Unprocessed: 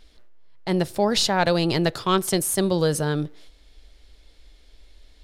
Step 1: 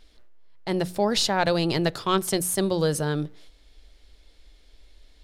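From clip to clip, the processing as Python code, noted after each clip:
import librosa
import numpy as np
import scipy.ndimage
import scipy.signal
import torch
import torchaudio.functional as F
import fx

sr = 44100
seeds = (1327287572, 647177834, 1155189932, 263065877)

y = fx.hum_notches(x, sr, base_hz=60, count=3)
y = y * librosa.db_to_amplitude(-2.0)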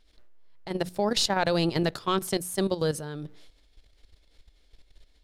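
y = fx.level_steps(x, sr, step_db=12)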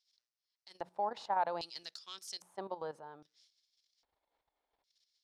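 y = fx.filter_lfo_bandpass(x, sr, shape='square', hz=0.62, low_hz=880.0, high_hz=5400.0, q=3.7)
y = y * librosa.db_to_amplitude(-1.0)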